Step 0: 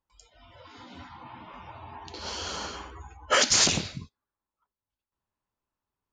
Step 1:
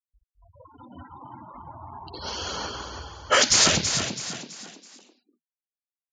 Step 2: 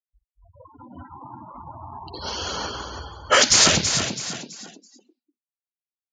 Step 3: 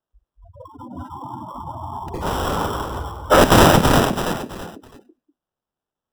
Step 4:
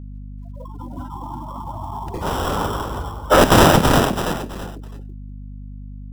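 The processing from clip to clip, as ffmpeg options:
-filter_complex "[0:a]afftfilt=real='re*gte(hypot(re,im),0.0126)':imag='im*gte(hypot(re,im),0.0126)':win_size=1024:overlap=0.75,asplit=2[a][b];[b]asplit=4[c][d][e][f];[c]adelay=329,afreqshift=39,volume=-7.5dB[g];[d]adelay=658,afreqshift=78,volume=-15.7dB[h];[e]adelay=987,afreqshift=117,volume=-23.9dB[i];[f]adelay=1316,afreqshift=156,volume=-32dB[j];[g][h][i][j]amix=inputs=4:normalize=0[k];[a][k]amix=inputs=2:normalize=0,volume=3dB"
-af "afftdn=nr=26:nf=-47,volume=3dB"
-filter_complex "[0:a]acrossover=split=380|1600[a][b][c];[c]acrusher=samples=20:mix=1:aa=0.000001[d];[a][b][d]amix=inputs=3:normalize=0,alimiter=level_in=9dB:limit=-1dB:release=50:level=0:latency=1,volume=-1dB"
-af "acrusher=bits=7:mode=log:mix=0:aa=0.000001,aeval=exprs='val(0)+0.0224*(sin(2*PI*50*n/s)+sin(2*PI*2*50*n/s)/2+sin(2*PI*3*50*n/s)/3+sin(2*PI*4*50*n/s)/4+sin(2*PI*5*50*n/s)/5)':c=same"

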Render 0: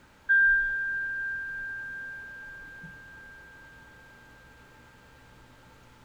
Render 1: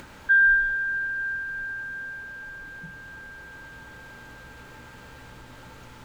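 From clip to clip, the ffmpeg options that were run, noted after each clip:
-af "acompressor=mode=upward:threshold=-41dB:ratio=2.5,volume=3.5dB"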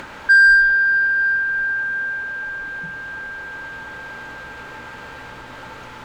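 -filter_complex "[0:a]asplit=2[a][b];[b]highpass=f=720:p=1,volume=11dB,asoftclip=type=tanh:threshold=-12.5dB[c];[a][c]amix=inputs=2:normalize=0,lowpass=f=2.1k:p=1,volume=-6dB,volume=7.5dB"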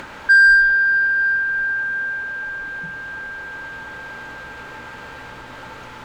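-af anull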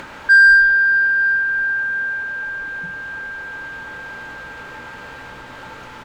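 -filter_complex "[0:a]asplit=2[a][b];[b]adelay=22,volume=-13dB[c];[a][c]amix=inputs=2:normalize=0"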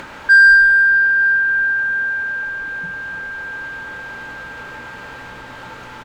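-af "aecho=1:1:291:0.237,volume=1dB"

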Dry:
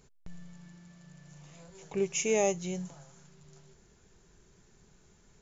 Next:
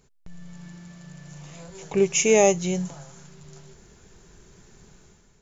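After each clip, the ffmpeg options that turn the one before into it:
-af "dynaudnorm=f=100:g=9:m=10dB"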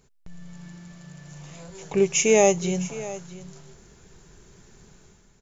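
-af "aecho=1:1:660:0.15"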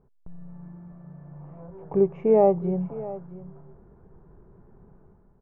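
-af "lowpass=f=1.1k:w=0.5412,lowpass=f=1.1k:w=1.3066"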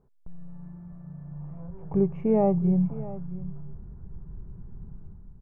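-af "asubboost=boost=8.5:cutoff=170,volume=-3dB"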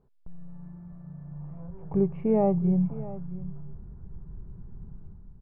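-af "aresample=11025,aresample=44100,volume=-1dB"

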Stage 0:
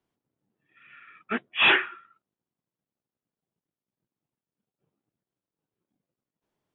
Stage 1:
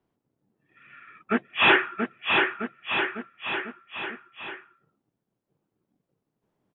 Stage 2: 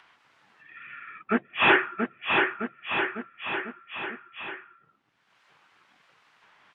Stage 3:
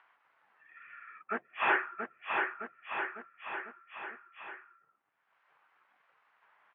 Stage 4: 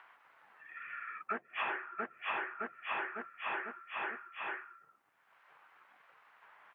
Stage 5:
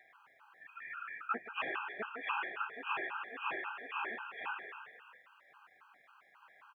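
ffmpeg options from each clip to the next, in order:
-filter_complex "[0:a]highshelf=f=2.1k:g=-11.5,asplit=2[a][b];[b]aecho=0:1:680|1292|1843|2339|2785:0.631|0.398|0.251|0.158|0.1[c];[a][c]amix=inputs=2:normalize=0,volume=6.5dB"
-filter_complex "[0:a]lowpass=2.8k,acrossover=split=1200[a][b];[b]acompressor=mode=upward:threshold=-34dB:ratio=2.5[c];[a][c]amix=inputs=2:normalize=0"
-filter_complex "[0:a]acrossover=split=480 2300:gain=0.178 1 0.0891[a][b][c];[a][b][c]amix=inputs=3:normalize=0,volume=-5.5dB"
-af "acompressor=threshold=-40dB:ratio=20,volume=6.5dB"
-filter_complex "[0:a]asplit=2[a][b];[b]asplit=8[c][d][e][f][g][h][i][j];[c]adelay=155,afreqshift=32,volume=-7.5dB[k];[d]adelay=310,afreqshift=64,volume=-11.8dB[l];[e]adelay=465,afreqshift=96,volume=-16.1dB[m];[f]adelay=620,afreqshift=128,volume=-20.4dB[n];[g]adelay=775,afreqshift=160,volume=-24.7dB[o];[h]adelay=930,afreqshift=192,volume=-29dB[p];[i]adelay=1085,afreqshift=224,volume=-33.3dB[q];[j]adelay=1240,afreqshift=256,volume=-37.6dB[r];[k][l][m][n][o][p][q][r]amix=inputs=8:normalize=0[s];[a][s]amix=inputs=2:normalize=0,afftfilt=real='re*gt(sin(2*PI*3.7*pts/sr)*(1-2*mod(floor(b*sr/1024/810),2)),0)':imag='im*gt(sin(2*PI*3.7*pts/sr)*(1-2*mod(floor(b*sr/1024/810),2)),0)':win_size=1024:overlap=0.75,volume=2dB"

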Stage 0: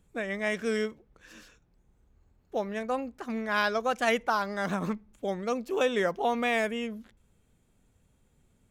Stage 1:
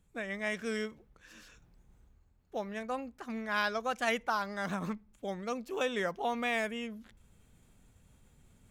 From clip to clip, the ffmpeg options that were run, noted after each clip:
-af "equalizer=f=410:t=o:w=1.6:g=-4,areverse,acompressor=mode=upward:threshold=-48dB:ratio=2.5,areverse,volume=-3.5dB"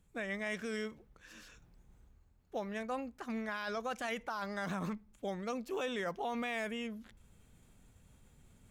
-af "alimiter=level_in=5dB:limit=-24dB:level=0:latency=1:release=21,volume=-5dB"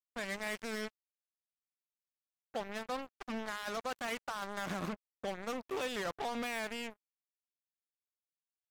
-af "acrusher=bits=5:mix=0:aa=0.5,volume=-1dB"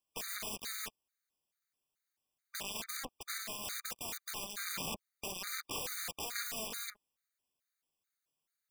-af "aeval=exprs='(mod(79.4*val(0)+1,2)-1)/79.4':c=same,afftfilt=real='re*gt(sin(2*PI*2.3*pts/sr)*(1-2*mod(floor(b*sr/1024/1200),2)),0)':imag='im*gt(sin(2*PI*2.3*pts/sr)*(1-2*mod(floor(b*sr/1024/1200),2)),0)':win_size=1024:overlap=0.75,volume=10.5dB"

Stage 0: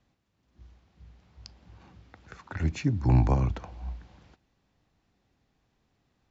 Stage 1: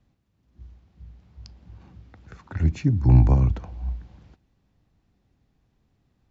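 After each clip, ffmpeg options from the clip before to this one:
-af "lowshelf=f=310:g=10.5,volume=-2.5dB"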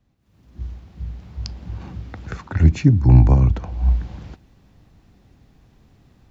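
-af "dynaudnorm=f=180:g=3:m=15.5dB,volume=-1dB"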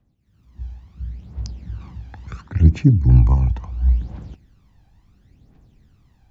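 -af "aphaser=in_gain=1:out_gain=1:delay=1.3:decay=0.6:speed=0.72:type=triangular,volume=-6.5dB"

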